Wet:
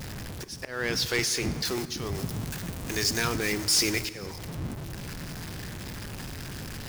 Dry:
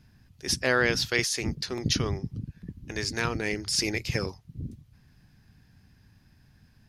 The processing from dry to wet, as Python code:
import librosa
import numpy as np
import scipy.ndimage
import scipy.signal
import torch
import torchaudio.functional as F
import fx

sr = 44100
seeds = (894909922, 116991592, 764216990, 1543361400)

y = x + 0.5 * 10.0 ** (-30.0 / 20.0) * np.sign(x)
y = fx.auto_swell(y, sr, attack_ms=358.0)
y = fx.high_shelf(y, sr, hz=4600.0, db=9.0, at=(1.65, 4.05))
y = np.clip(y, -10.0 ** (-17.5 / 20.0), 10.0 ** (-17.5 / 20.0))
y = fx.peak_eq(y, sr, hz=62.0, db=-2.5, octaves=1.7)
y = fx.rev_plate(y, sr, seeds[0], rt60_s=2.5, hf_ratio=0.6, predelay_ms=0, drr_db=12.5)
y = y * 10.0 ** (-1.5 / 20.0)